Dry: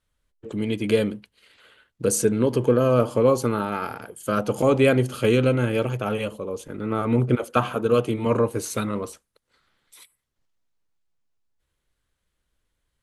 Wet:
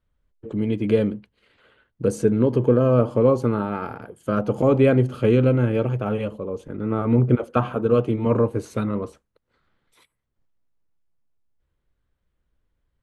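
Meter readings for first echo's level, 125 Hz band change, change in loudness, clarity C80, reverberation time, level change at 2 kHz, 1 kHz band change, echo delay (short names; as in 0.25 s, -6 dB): none, +4.0 dB, +1.5 dB, none, none, -4.5 dB, -1.5 dB, none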